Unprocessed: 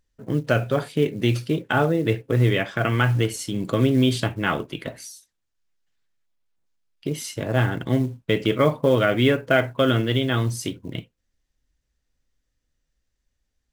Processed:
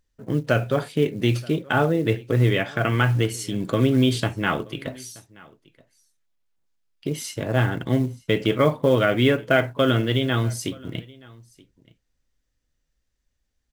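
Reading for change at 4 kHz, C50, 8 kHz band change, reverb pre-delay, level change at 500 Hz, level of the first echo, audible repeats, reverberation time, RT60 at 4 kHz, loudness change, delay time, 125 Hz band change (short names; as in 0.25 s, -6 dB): 0.0 dB, none, 0.0 dB, none, 0.0 dB, -24.0 dB, 1, none, none, 0.0 dB, 0.927 s, 0.0 dB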